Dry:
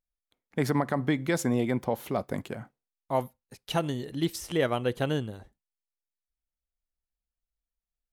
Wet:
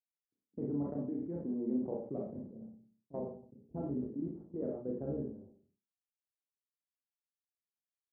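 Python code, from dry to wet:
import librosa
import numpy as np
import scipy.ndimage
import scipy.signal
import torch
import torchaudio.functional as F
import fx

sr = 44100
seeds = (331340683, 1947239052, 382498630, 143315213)

p1 = fx.octave_divider(x, sr, octaves=1, level_db=-6.0)
p2 = fx.tilt_eq(p1, sr, slope=3.5)
p3 = fx.cheby_harmonics(p2, sr, harmonics=(3, 6), levels_db=(-29, -27), full_scale_db=-11.0)
p4 = fx.ladder_lowpass(p3, sr, hz=410.0, resonance_pct=20)
p5 = fx.low_shelf(p4, sr, hz=250.0, db=-4.5)
p6 = p5 + fx.room_flutter(p5, sr, wall_m=10.0, rt60_s=0.29, dry=0)
p7 = fx.level_steps(p6, sr, step_db=16)
p8 = scipy.signal.sosfilt(scipy.signal.butter(2, 100.0, 'highpass', fs=sr, output='sos'), p7)
p9 = fx.rev_schroeder(p8, sr, rt60_s=0.33, comb_ms=28, drr_db=-1.5)
p10 = fx.env_lowpass(p9, sr, base_hz=300.0, full_db=-43.0)
p11 = fx.sustainer(p10, sr, db_per_s=94.0)
y = p11 * librosa.db_to_amplitude(9.5)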